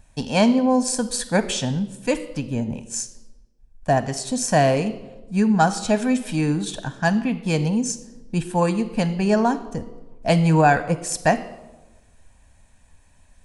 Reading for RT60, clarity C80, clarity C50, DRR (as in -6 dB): 1.2 s, 16.0 dB, 14.0 dB, 11.5 dB